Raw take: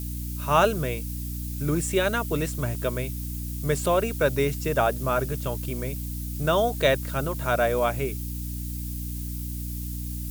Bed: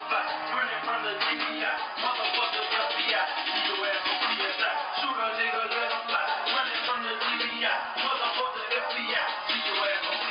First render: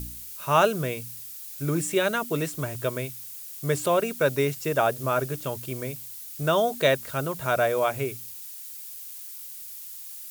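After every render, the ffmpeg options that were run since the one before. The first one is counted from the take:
-af "bandreject=f=60:t=h:w=4,bandreject=f=120:t=h:w=4,bandreject=f=180:t=h:w=4,bandreject=f=240:t=h:w=4,bandreject=f=300:t=h:w=4"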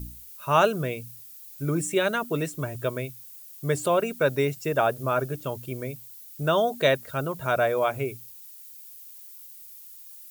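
-af "afftdn=nr=9:nf=-41"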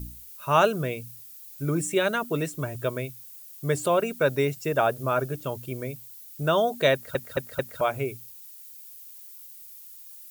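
-filter_complex "[0:a]asplit=5[a][b][c][d][e];[a]atrim=end=7.152[f];[b]atrim=start=6.928:end=7.152[g];[c]atrim=start=6.928:end=7.152[h];[d]atrim=start=6.928:end=7.152[i];[e]atrim=start=7.808[j];[f][g]acrossfade=d=0.004:c1=hsin:c2=hsin[k];[k][h]acrossfade=d=0.004:c1=hsin:c2=hsin[l];[l][i]acrossfade=d=0.004:c1=hsin:c2=hsin[m];[m][j]acrossfade=d=0.004:c1=hsin:c2=hsin"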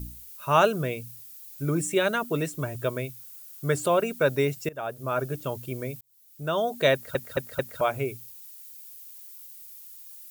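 -filter_complex "[0:a]asettb=1/sr,asplit=3[a][b][c];[a]atrim=end=3.194[d];[b]atrim=start=3.19:end=3.81,asetpts=PTS-STARTPTS,afade=t=in:d=0.004:c=qsin,afade=t=out:st=0.616:d=0.004:c=qsin,equalizer=f=1.4k:w=6:g=9[e];[c]atrim=start=3.806[f];[d][e]acrossfade=d=0.004:c1=hsin:c2=qsin[g];[g][f]acrossfade=d=0.004:c1=qsin:c2=hsin,asplit=3[h][i][j];[h]atrim=end=4.69,asetpts=PTS-STARTPTS,afade=t=out:st=4.686:d=0.004:c=hsin:silence=0.0891251[k];[i]atrim=start=4.69:end=6.01,asetpts=PTS-STARTPTS,afade=t=in:d=0.64:silence=0.0891251,afade=t=out:st=1.316:d=0.004:c=hsin[l];[j]atrim=start=6.01,asetpts=PTS-STARTPTS,afade=t=in:d=0.88[m];[k][l][m]concat=n=3:v=0:a=1"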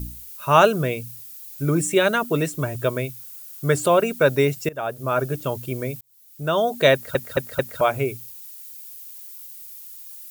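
-af "volume=5.5dB"

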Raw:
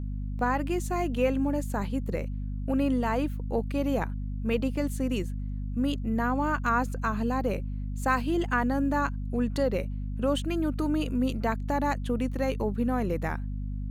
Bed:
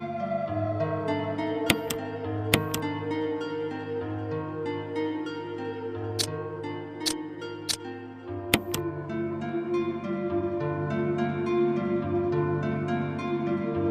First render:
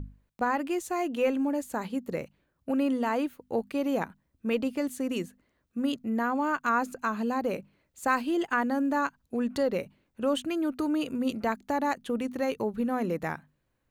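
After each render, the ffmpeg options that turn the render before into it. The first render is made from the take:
-af "bandreject=f=50:t=h:w=6,bandreject=f=100:t=h:w=6,bandreject=f=150:t=h:w=6,bandreject=f=200:t=h:w=6,bandreject=f=250:t=h:w=6"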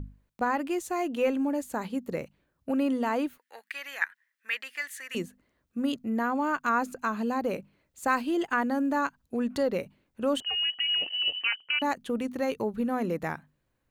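-filter_complex "[0:a]asettb=1/sr,asplit=3[a][b][c];[a]atrim=end=3.384[d];[b]atrim=start=3.38:end=5.15,asetpts=PTS-STARTPTS,afade=t=in:d=0.004:c=qsin,afade=t=out:st=1.766:d=0.004:c=qsin,highpass=f=1.8k:t=q:w=6.5[e];[c]atrim=start=5.146[f];[d][e]acrossfade=d=0.004:c1=hsin:c2=qsin[g];[g][f]acrossfade=d=0.004:c1=qsin:c2=hsin,asettb=1/sr,asplit=3[h][i][j];[h]atrim=end=10.404[k];[i]atrim=start=10.4:end=11.82,asetpts=PTS-STARTPTS,afade=t=in:d=0.004:c=qsin,afade=t=out:st=1.416:d=0.004:c=qsin,lowpass=f=2.7k:t=q:w=0.5098,lowpass=f=2.7k:t=q:w=0.6013,lowpass=f=2.7k:t=q:w=0.9,lowpass=f=2.7k:t=q:w=2.563,afreqshift=-3200[l];[j]atrim=start=11.816[m];[k][l]acrossfade=d=0.004:c1=hsin:c2=qsin[n];[n][m]acrossfade=d=0.004:c1=qsin:c2=hsin"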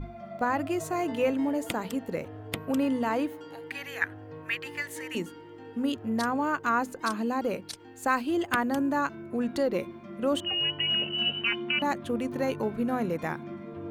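-filter_complex "[1:a]volume=-12dB[a];[0:a][a]amix=inputs=2:normalize=0"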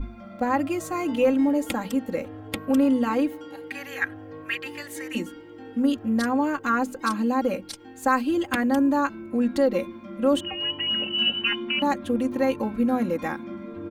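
-af "lowshelf=f=200:g=4,aecho=1:1:3.7:0.92"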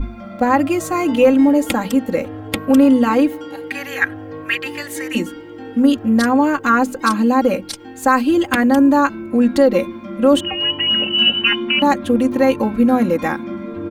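-af "volume=9dB,alimiter=limit=-3dB:level=0:latency=1"

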